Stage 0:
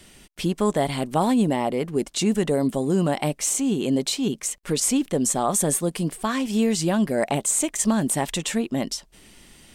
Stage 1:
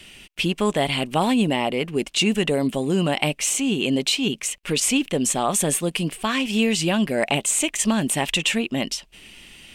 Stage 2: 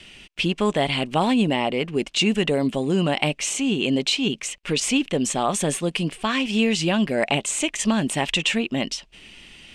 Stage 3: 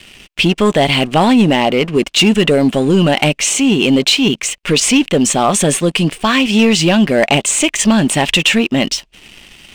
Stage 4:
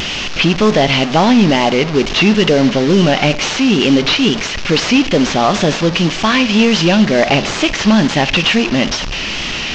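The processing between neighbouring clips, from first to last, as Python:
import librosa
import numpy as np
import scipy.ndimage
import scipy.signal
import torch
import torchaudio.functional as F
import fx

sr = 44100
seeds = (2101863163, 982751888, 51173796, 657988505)

y1 = fx.peak_eq(x, sr, hz=2700.0, db=13.5, octaves=0.75)
y2 = scipy.signal.sosfilt(scipy.signal.butter(2, 6900.0, 'lowpass', fs=sr, output='sos'), y1)
y3 = fx.leveller(y2, sr, passes=2)
y3 = F.gain(torch.from_numpy(y3), 3.5).numpy()
y4 = fx.delta_mod(y3, sr, bps=32000, step_db=-14.5)
y4 = fx.wow_flutter(y4, sr, seeds[0], rate_hz=2.1, depth_cents=49.0)
y4 = fx.rev_schroeder(y4, sr, rt60_s=0.74, comb_ms=29, drr_db=15.5)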